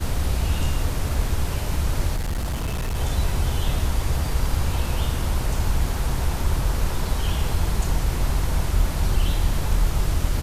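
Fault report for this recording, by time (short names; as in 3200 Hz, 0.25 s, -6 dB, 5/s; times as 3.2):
2.16–2.96 clipped -22 dBFS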